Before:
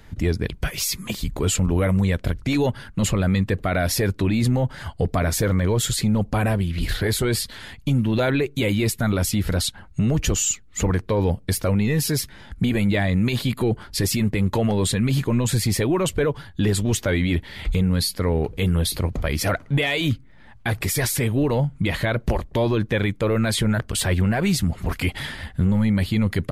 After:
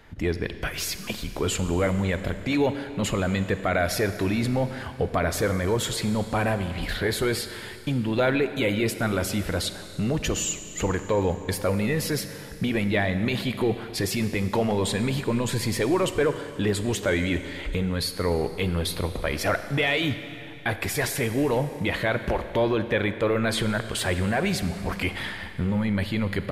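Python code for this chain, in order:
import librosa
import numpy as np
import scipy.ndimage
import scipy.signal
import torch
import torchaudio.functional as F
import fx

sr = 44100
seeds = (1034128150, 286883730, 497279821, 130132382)

y = fx.bass_treble(x, sr, bass_db=-8, treble_db=-7)
y = fx.rev_schroeder(y, sr, rt60_s=2.7, comb_ms=31, drr_db=10.0)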